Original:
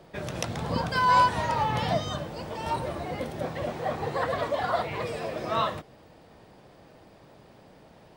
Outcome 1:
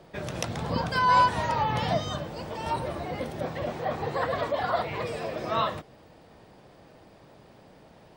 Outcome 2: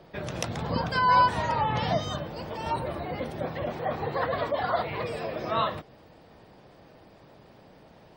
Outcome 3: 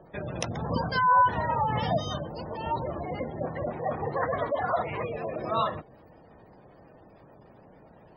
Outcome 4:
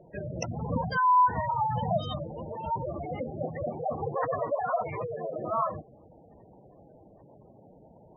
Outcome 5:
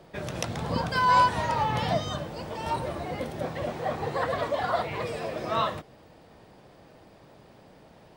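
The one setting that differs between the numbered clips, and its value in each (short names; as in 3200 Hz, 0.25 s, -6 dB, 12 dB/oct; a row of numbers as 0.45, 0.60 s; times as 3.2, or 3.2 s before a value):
spectral gate, under each frame's peak: -45, -35, -20, -10, -60 dB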